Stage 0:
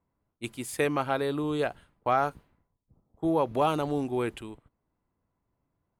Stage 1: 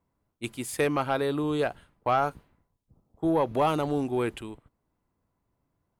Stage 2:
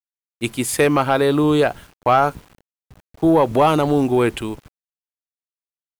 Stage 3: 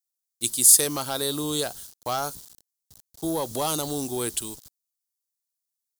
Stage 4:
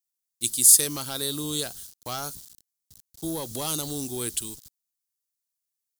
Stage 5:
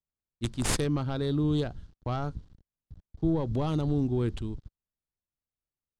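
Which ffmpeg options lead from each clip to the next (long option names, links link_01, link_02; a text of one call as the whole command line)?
ffmpeg -i in.wav -af "asoftclip=type=tanh:threshold=-15.5dB,volume=2dB" out.wav
ffmpeg -i in.wav -filter_complex "[0:a]asplit=2[link_01][link_02];[link_02]alimiter=limit=-23.5dB:level=0:latency=1:release=188,volume=2dB[link_03];[link_01][link_03]amix=inputs=2:normalize=0,acrusher=bits=8:mix=0:aa=0.000001,volume=6dB" out.wav
ffmpeg -i in.wav -af "aexciter=amount=14.7:drive=4:freq=3700,volume=-13.5dB" out.wav
ffmpeg -i in.wav -af "equalizer=frequency=740:width_type=o:width=2:gain=-8.5" out.wav
ffmpeg -i in.wav -af "adynamicsmooth=sensitivity=1.5:basefreq=2100,aemphasis=mode=reproduction:type=riaa" out.wav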